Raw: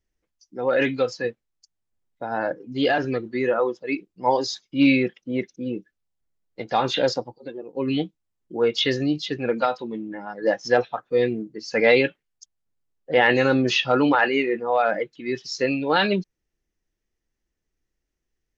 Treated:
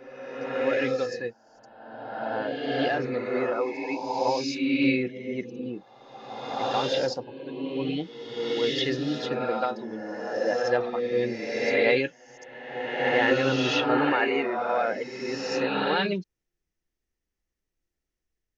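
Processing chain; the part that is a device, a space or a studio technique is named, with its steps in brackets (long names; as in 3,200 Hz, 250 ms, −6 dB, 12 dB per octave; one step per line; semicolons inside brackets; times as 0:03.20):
reverse reverb (reversed playback; convolution reverb RT60 1.7 s, pre-delay 56 ms, DRR 0.5 dB; reversed playback)
level −6.5 dB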